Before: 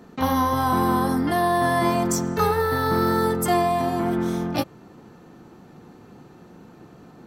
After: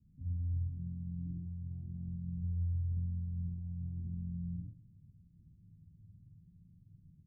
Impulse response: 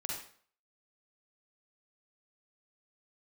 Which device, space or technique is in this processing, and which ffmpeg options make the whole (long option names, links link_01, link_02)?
club heard from the street: -filter_complex "[0:a]alimiter=limit=-17.5dB:level=0:latency=1,lowpass=frequency=120:width=0.5412,lowpass=frequency=120:width=1.3066[link_01];[1:a]atrim=start_sample=2205[link_02];[link_01][link_02]afir=irnorm=-1:irlink=0,asplit=3[link_03][link_04][link_05];[link_03]afade=type=out:start_time=0.67:duration=0.02[link_06];[link_04]aecho=1:1:6.3:0.5,afade=type=in:start_time=0.67:duration=0.02,afade=type=out:start_time=1.45:duration=0.02[link_07];[link_05]afade=type=in:start_time=1.45:duration=0.02[link_08];[link_06][link_07][link_08]amix=inputs=3:normalize=0,volume=-3dB"